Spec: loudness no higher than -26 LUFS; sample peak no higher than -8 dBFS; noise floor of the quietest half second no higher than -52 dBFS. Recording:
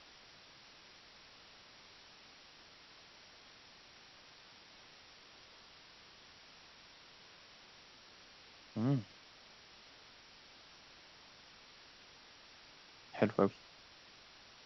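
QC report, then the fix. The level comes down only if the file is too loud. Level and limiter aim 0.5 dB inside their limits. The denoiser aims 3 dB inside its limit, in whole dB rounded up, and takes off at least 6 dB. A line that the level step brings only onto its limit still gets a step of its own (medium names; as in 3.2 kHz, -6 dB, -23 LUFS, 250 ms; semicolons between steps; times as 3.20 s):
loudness -37.0 LUFS: pass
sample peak -15.5 dBFS: pass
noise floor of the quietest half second -59 dBFS: pass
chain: none needed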